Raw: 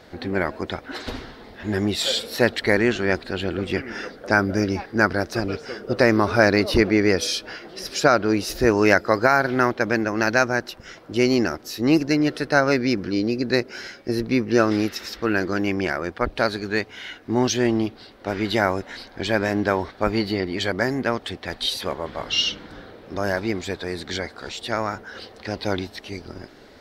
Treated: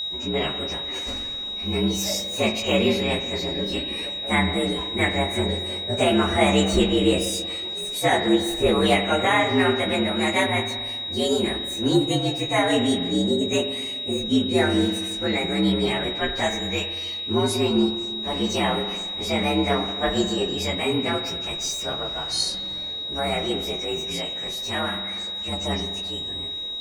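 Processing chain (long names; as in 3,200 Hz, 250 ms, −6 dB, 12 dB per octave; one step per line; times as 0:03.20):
partials spread apart or drawn together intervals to 117%
multi-voice chorus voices 2, 0.47 Hz, delay 18 ms, depth 4 ms
steady tone 3,800 Hz −29 dBFS
spring reverb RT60 1.6 s, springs 41/46 ms, chirp 60 ms, DRR 7.5 dB
level +3 dB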